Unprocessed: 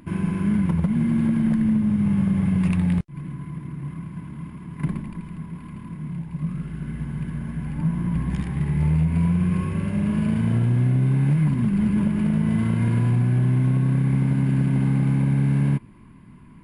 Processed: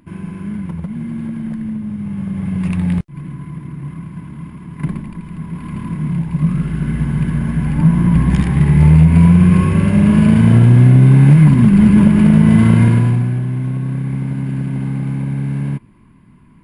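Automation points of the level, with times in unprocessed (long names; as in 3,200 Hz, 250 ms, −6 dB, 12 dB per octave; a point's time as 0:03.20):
0:02.10 −3.5 dB
0:02.90 +4.5 dB
0:05.22 +4.5 dB
0:05.79 +12 dB
0:12.78 +12 dB
0:13.45 0 dB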